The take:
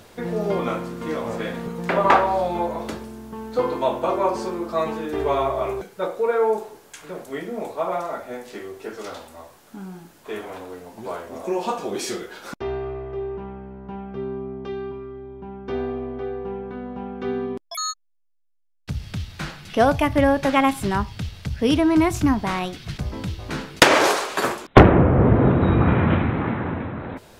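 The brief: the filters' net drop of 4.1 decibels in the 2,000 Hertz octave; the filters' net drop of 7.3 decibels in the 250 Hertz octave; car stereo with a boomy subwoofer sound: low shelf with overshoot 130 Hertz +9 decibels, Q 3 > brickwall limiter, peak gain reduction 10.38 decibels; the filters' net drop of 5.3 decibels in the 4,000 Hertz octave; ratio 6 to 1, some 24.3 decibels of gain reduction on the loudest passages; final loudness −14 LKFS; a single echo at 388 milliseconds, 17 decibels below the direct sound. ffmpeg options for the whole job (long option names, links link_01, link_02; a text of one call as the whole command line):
ffmpeg -i in.wav -af "equalizer=frequency=250:width_type=o:gain=-7,equalizer=frequency=2000:width_type=o:gain=-4,equalizer=frequency=4000:width_type=o:gain=-5.5,acompressor=threshold=-34dB:ratio=6,lowshelf=frequency=130:width_type=q:width=3:gain=9,aecho=1:1:388:0.141,volume=21.5dB,alimiter=limit=-1.5dB:level=0:latency=1" out.wav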